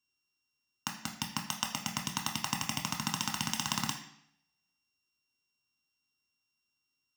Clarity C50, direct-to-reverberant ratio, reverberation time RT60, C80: 8.0 dB, 1.0 dB, 0.70 s, 10.5 dB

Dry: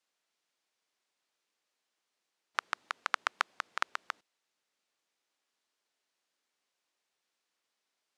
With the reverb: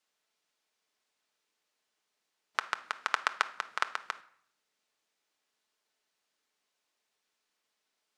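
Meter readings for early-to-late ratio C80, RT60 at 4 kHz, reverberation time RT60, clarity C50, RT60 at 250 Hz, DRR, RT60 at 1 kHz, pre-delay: 20.0 dB, 0.45 s, 0.60 s, 16.0 dB, 0.80 s, 9.0 dB, 0.65 s, 5 ms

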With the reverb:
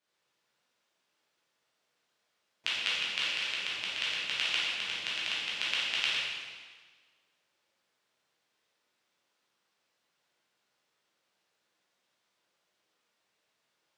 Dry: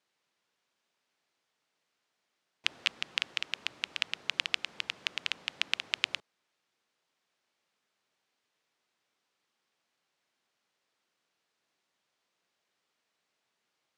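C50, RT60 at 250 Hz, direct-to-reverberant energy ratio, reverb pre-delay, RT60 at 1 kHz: −2.0 dB, 1.5 s, −8.5 dB, 7 ms, 1.5 s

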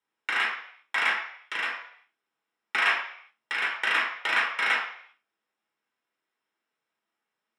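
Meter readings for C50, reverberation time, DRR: 4.5 dB, 0.60 s, −4.0 dB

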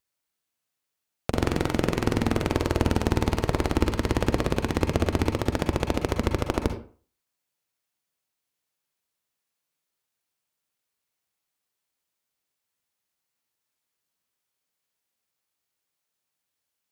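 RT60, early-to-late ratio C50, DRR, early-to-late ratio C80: 0.40 s, 7.0 dB, 5.5 dB, 12.5 dB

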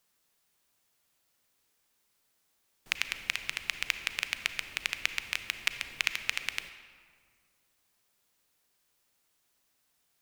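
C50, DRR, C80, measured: 10.0 dB, 9.5 dB, 11.5 dB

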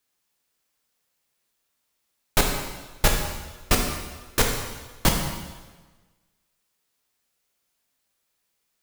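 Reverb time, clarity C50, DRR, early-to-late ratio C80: 1.3 s, 3.5 dB, 1.0 dB, 5.5 dB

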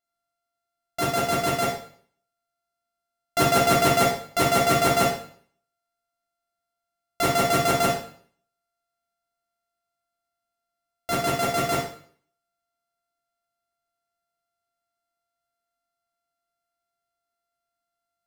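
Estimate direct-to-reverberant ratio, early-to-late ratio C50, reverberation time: −3.5 dB, 4.5 dB, 0.55 s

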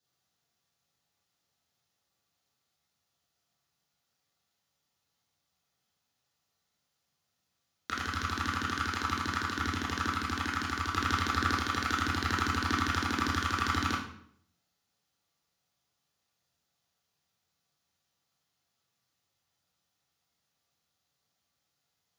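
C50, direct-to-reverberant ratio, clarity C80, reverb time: 4.0 dB, −8.5 dB, 8.0 dB, 0.65 s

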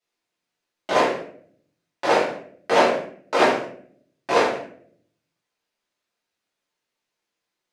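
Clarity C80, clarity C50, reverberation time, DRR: 8.0 dB, 3.5 dB, 0.55 s, −11.0 dB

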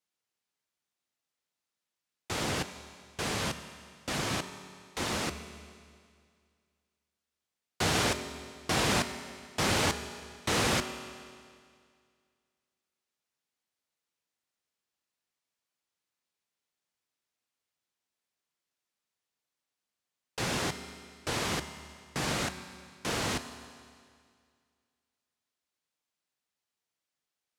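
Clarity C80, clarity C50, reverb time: 11.5 dB, 10.5 dB, 2.1 s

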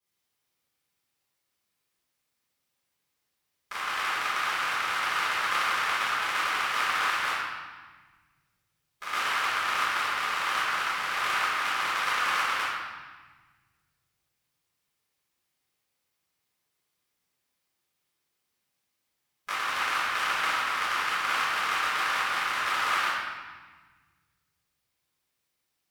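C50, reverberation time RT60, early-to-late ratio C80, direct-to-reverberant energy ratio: −3.0 dB, 1.3 s, 0.5 dB, −16.0 dB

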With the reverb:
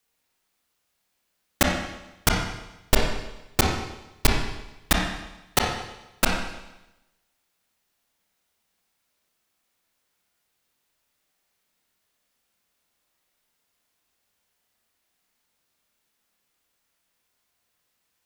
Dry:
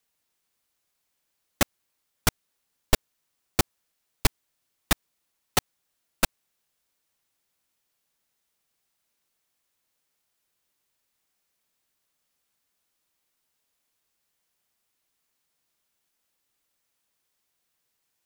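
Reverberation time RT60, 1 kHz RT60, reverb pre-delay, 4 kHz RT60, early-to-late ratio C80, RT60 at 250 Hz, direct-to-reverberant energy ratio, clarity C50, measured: 0.95 s, 0.95 s, 27 ms, 1.0 s, 4.5 dB, 0.95 s, −1.0 dB, 2.0 dB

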